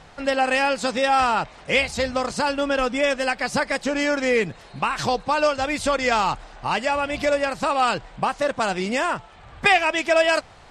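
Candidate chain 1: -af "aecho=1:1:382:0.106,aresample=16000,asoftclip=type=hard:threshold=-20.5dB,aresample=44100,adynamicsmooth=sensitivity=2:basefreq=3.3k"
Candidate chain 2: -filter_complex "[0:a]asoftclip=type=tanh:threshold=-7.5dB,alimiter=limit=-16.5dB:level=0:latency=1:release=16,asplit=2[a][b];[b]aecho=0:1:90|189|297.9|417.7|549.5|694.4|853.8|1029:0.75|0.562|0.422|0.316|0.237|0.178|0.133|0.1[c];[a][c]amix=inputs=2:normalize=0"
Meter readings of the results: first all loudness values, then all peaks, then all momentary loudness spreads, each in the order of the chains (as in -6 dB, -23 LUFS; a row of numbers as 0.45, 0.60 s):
-25.5, -22.5 LUFS; -19.0, -9.5 dBFS; 5, 4 LU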